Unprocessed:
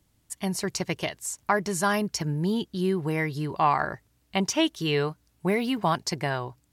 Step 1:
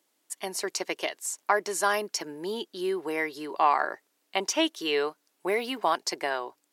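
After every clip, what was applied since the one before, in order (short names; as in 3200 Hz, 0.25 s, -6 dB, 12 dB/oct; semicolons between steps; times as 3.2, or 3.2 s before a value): HPF 330 Hz 24 dB/oct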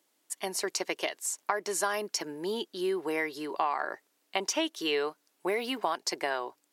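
compressor 6:1, threshold -25 dBFS, peak gain reduction 8.5 dB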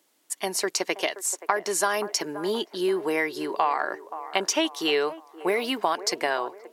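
band-limited delay 0.526 s, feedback 39%, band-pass 740 Hz, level -12.5 dB; gain +5.5 dB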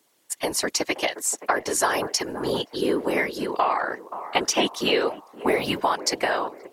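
whisperiser; gain +2 dB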